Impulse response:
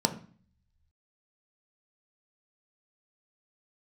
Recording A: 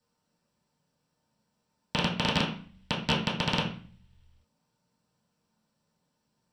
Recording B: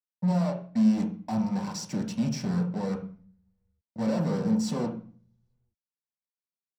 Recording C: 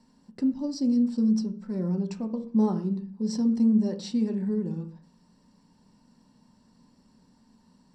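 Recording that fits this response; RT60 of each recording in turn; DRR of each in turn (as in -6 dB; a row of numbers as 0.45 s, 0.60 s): C; 0.45 s, 0.45 s, 0.45 s; -9.5 dB, -0.5 dB, 5.0 dB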